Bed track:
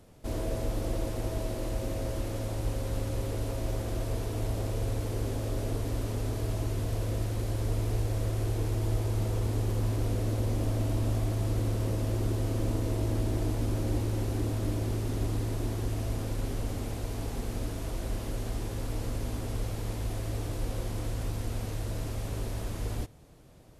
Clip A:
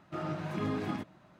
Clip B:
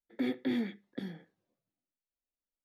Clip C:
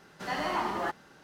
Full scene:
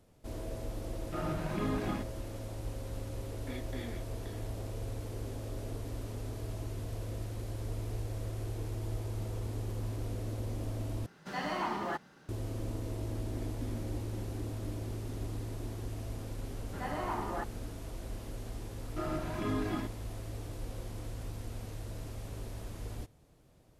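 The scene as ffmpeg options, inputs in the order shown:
-filter_complex "[1:a]asplit=2[s0][s1];[2:a]asplit=2[s2][s3];[3:a]asplit=2[s4][s5];[0:a]volume=0.398[s6];[s2]highpass=f=670:p=1[s7];[s4]equalizer=f=170:w=1.1:g=5.5[s8];[s3]tiltshelf=f=970:g=3.5[s9];[s5]lowpass=f=1100:p=1[s10];[s1]aecho=1:1:3:0.47[s11];[s6]asplit=2[s12][s13];[s12]atrim=end=11.064[s14];[s8]atrim=end=1.23,asetpts=PTS-STARTPTS,volume=0.596[s15];[s13]atrim=start=12.286[s16];[s0]atrim=end=1.39,asetpts=PTS-STARTPTS,volume=0.944,afade=t=in:d=0.004:c=hsin,afade=t=out:st=1.386:d=0.004:c=hsin,adelay=1000[s17];[s7]atrim=end=2.64,asetpts=PTS-STARTPTS,volume=0.562,afade=t=in:d=0.004:c=hsin,afade=t=out:st=2.636:d=0.004:c=hsin,adelay=3280[s18];[s9]atrim=end=2.64,asetpts=PTS-STARTPTS,volume=0.141,afade=t=in:d=0.004:c=hsin,afade=t=out:st=2.636:d=0.004:c=hsin,adelay=580356S[s19];[s10]atrim=end=1.23,asetpts=PTS-STARTPTS,volume=0.668,afade=t=in:d=0.004:c=hsin,afade=t=out:st=1.226:d=0.004:c=hsin,adelay=16530[s20];[s11]atrim=end=1.39,asetpts=PTS-STARTPTS,volume=0.841,afade=t=in:d=0.004:c=hsin,afade=t=out:st=1.386:d=0.004:c=hsin,adelay=18840[s21];[s14][s15]acrossfade=d=0.004:c1=hsin:c2=hsin[s22];[s22][s16]acrossfade=d=0.004:c1=hsin:c2=hsin[s23];[s23][s17][s18][s19][s20][s21]amix=inputs=6:normalize=0"

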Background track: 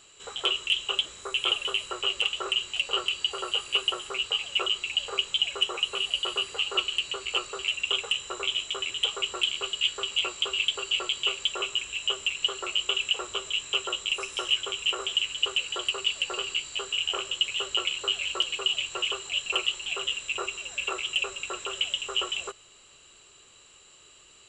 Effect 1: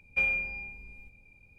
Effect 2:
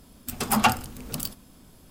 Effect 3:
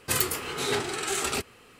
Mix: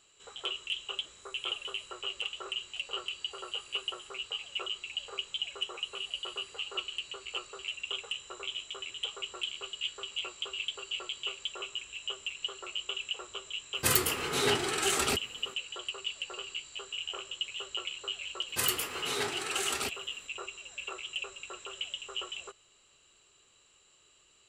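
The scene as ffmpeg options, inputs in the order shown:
-filter_complex "[3:a]asplit=2[s0][s1];[0:a]volume=0.335[s2];[s1]lowshelf=f=390:g=-6.5[s3];[s0]atrim=end=1.79,asetpts=PTS-STARTPTS,volume=0.944,afade=t=in:d=0.004:c=hsin,afade=t=out:st=1.786:d=0.004:c=hsin,adelay=13750[s4];[s3]atrim=end=1.79,asetpts=PTS-STARTPTS,volume=0.631,afade=t=in:d=0.004:c=hsin,afade=t=out:st=1.786:d=0.004:c=hsin,adelay=18480[s5];[s2][s4][s5]amix=inputs=3:normalize=0"

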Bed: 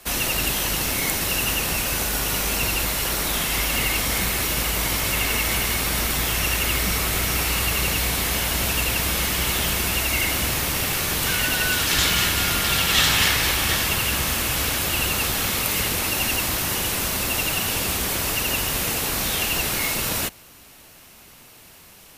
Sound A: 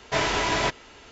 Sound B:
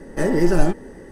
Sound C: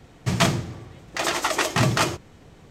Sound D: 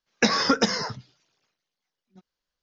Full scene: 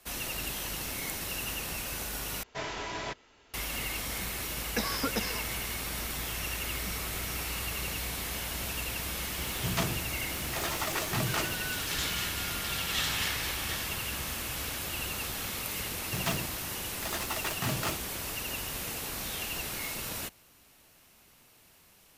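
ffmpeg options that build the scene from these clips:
-filter_complex "[3:a]asplit=2[s0][s1];[0:a]volume=0.237[s2];[s0]aeval=exprs='val(0)+0.5*0.0376*sgn(val(0))':c=same[s3];[s1]acrusher=bits=3:mix=0:aa=0.5[s4];[s2]asplit=2[s5][s6];[s5]atrim=end=2.434[s7];[1:a]atrim=end=1.11,asetpts=PTS-STARTPTS,volume=0.237[s8];[s6]atrim=start=3.536[s9];[4:a]atrim=end=2.62,asetpts=PTS-STARTPTS,volume=0.266,afade=t=in:d=0.004:c=hsin,afade=t=out:st=2.616:d=0.004:c=hsin,adelay=4540[s10];[s3]atrim=end=2.7,asetpts=PTS-STARTPTS,volume=0.237,afade=t=in:d=0.004:c=hsin,afade=t=out:st=2.696:d=0.004:c=hsin,adelay=9370[s11];[s4]atrim=end=2.7,asetpts=PTS-STARTPTS,volume=0.224,afade=t=in:d=0.004:c=hsin,afade=t=out:st=2.696:d=0.004:c=hsin,adelay=15860[s12];[s7][s8]acrossfade=d=0.004:c1=hsin:c2=hsin[s13];[s13][s9]acrossfade=d=0.004:c1=hsin:c2=hsin[s14];[s14][s10][s11][s12]amix=inputs=4:normalize=0"

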